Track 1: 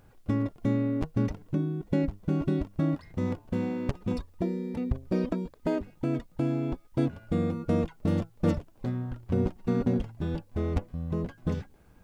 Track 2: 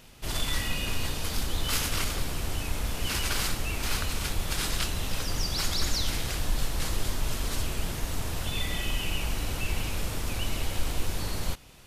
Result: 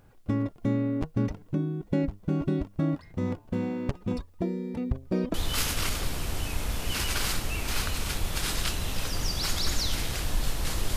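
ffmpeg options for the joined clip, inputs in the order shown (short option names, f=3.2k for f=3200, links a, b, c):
-filter_complex "[0:a]apad=whole_dur=10.96,atrim=end=10.96,atrim=end=5.342[a];[1:a]atrim=start=1.488:end=7.11[b];[a][b]acrossfade=d=0.004:c1=hsin:c2=hsin"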